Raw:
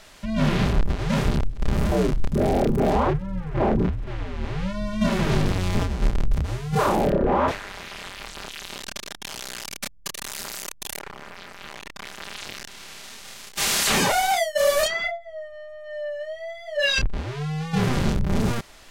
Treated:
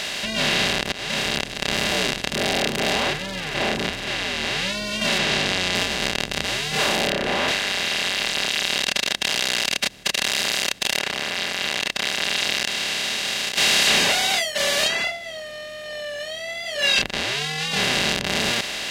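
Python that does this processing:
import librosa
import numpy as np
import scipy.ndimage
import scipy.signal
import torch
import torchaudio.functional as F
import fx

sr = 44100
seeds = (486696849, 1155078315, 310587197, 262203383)

y = fx.air_absorb(x, sr, metres=77.0, at=(5.18, 5.75))
y = fx.edit(y, sr, fx.fade_in_span(start_s=0.92, length_s=0.63), tone=tone)
y = fx.bin_compress(y, sr, power=0.4)
y = fx.weighting(y, sr, curve='D')
y = F.gain(torch.from_numpy(y), -9.5).numpy()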